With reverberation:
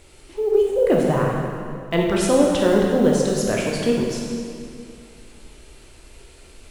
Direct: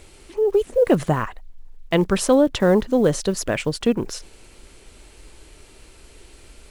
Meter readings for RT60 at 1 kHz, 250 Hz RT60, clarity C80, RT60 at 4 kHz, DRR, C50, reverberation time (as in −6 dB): 2.2 s, 2.5 s, 2.0 dB, 1.9 s, −2.0 dB, 0.5 dB, 2.3 s